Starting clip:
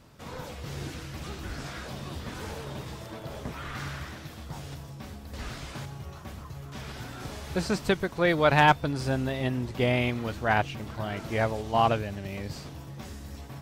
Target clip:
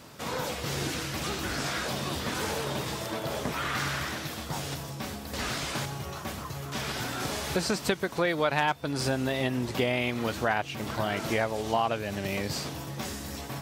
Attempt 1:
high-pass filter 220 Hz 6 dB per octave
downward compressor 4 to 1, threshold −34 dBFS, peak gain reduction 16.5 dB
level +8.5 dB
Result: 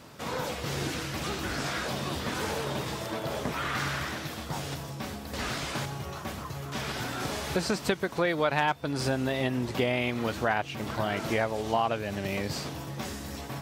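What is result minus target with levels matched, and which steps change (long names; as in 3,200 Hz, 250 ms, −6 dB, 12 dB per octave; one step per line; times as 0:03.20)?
8,000 Hz band −2.5 dB
add after high-pass filter: high-shelf EQ 4,100 Hz +4 dB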